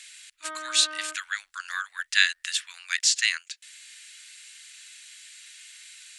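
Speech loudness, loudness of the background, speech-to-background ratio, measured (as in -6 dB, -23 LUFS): -25.5 LUFS, -38.5 LUFS, 13.0 dB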